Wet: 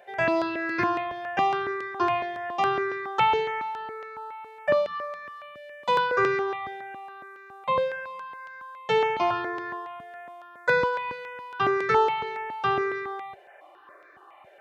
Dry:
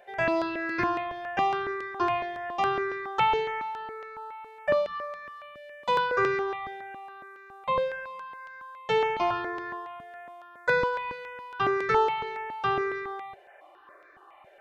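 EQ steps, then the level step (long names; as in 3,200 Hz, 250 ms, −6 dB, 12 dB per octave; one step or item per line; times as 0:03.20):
high-pass filter 72 Hz
+2.0 dB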